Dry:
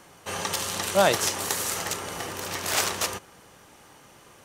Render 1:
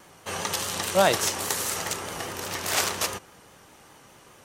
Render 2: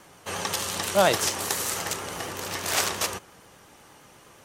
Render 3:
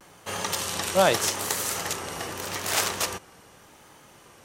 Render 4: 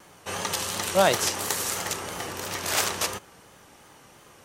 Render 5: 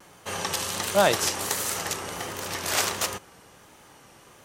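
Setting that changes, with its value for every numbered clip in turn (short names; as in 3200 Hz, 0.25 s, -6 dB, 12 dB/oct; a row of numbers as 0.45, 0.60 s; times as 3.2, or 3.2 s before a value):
vibrato, rate: 4.9, 8.5, 0.83, 2.9, 1.4 Hz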